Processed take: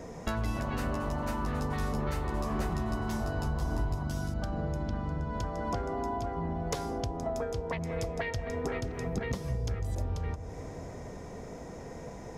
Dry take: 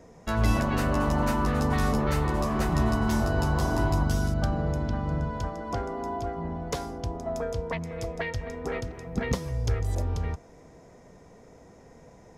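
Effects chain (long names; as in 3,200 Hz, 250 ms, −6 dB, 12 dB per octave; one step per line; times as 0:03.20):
0:03.46–0:03.95: low-shelf EQ 82 Hz +10 dB
downward compressor 6 to 1, threshold −39 dBFS, peak gain reduction 21.5 dB
bucket-brigade delay 188 ms, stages 1,024, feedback 80%, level −12 dB
level +8 dB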